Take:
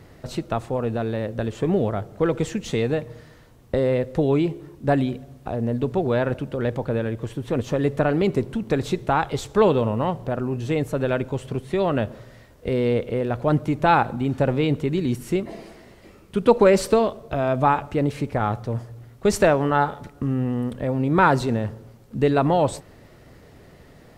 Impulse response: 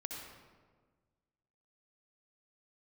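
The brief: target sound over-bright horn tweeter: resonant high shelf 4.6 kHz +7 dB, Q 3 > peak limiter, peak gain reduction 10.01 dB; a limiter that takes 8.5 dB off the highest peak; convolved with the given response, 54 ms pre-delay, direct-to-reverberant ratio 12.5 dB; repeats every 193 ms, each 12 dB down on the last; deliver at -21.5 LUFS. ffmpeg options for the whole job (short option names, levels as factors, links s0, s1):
-filter_complex "[0:a]alimiter=limit=0.266:level=0:latency=1,aecho=1:1:193|386|579:0.251|0.0628|0.0157,asplit=2[s0][s1];[1:a]atrim=start_sample=2205,adelay=54[s2];[s1][s2]afir=irnorm=-1:irlink=0,volume=0.266[s3];[s0][s3]amix=inputs=2:normalize=0,highshelf=f=4600:t=q:w=3:g=7,volume=1.5,alimiter=limit=0.282:level=0:latency=1"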